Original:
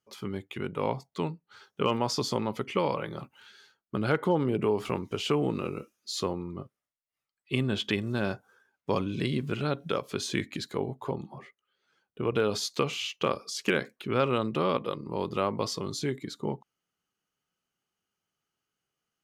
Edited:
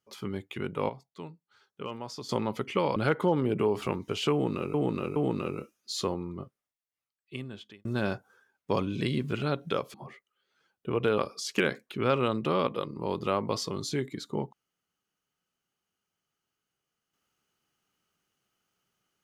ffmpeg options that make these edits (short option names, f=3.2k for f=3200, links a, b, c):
-filter_complex "[0:a]asplit=9[a][b][c][d][e][f][g][h][i];[a]atrim=end=0.892[j];[b]atrim=start=0.888:end=2.292,asetpts=PTS-STARTPTS,volume=-11dB[k];[c]atrim=start=2.288:end=2.962[l];[d]atrim=start=3.988:end=5.772[m];[e]atrim=start=5.348:end=5.772[n];[f]atrim=start=5.348:end=8.04,asetpts=PTS-STARTPTS,afade=t=out:st=1.142:d=1.55[o];[g]atrim=start=8.04:end=10.132,asetpts=PTS-STARTPTS,afade=t=in:d=0.004:c=hsin[p];[h]atrim=start=11.258:end=12.502[q];[i]atrim=start=13.278[r];[j][k]acrossfade=d=0.004:c1=hsin:c2=hsin[s];[s][l]acrossfade=d=0.004:c1=hsin:c2=hsin[t];[t][m]acrossfade=d=0.004:c1=hsin:c2=hsin[u];[u][n]acrossfade=d=0.004:c1=hsin:c2=hsin[v];[o][p]concat=n=2:v=0:a=1[w];[v][w]acrossfade=d=0.004:c1=hsin:c2=hsin[x];[x][q]acrossfade=d=0.004:c1=hsin:c2=hsin[y];[y][r]acrossfade=d=0.004:c1=hsin:c2=hsin"